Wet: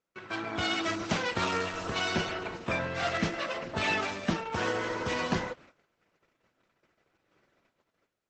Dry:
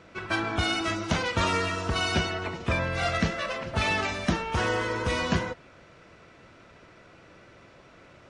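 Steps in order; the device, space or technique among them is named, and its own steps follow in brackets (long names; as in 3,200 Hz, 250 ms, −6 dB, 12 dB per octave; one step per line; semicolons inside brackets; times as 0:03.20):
0:03.13–0:04.03: dynamic equaliser 340 Hz, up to +7 dB, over −51 dBFS, Q 5.6
video call (high-pass filter 140 Hz 12 dB per octave; automatic gain control gain up to 6 dB; noise gate −44 dBFS, range −28 dB; level −8 dB; Opus 12 kbit/s 48,000 Hz)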